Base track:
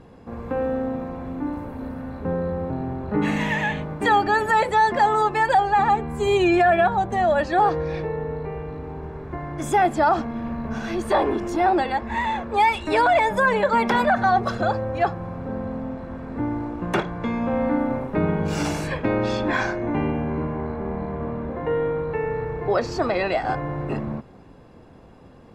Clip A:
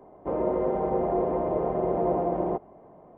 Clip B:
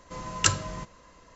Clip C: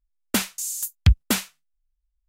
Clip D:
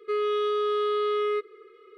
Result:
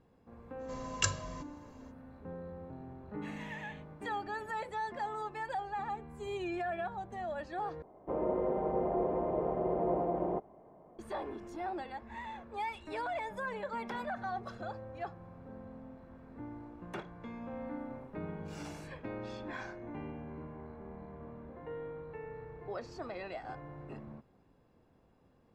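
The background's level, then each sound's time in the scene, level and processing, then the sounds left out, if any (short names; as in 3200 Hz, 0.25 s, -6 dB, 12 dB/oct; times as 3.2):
base track -19.5 dB
0.58 add B -10 dB, fades 0.05 s + comb 1.8 ms, depth 68%
7.82 replace with A -6.5 dB
not used: C, D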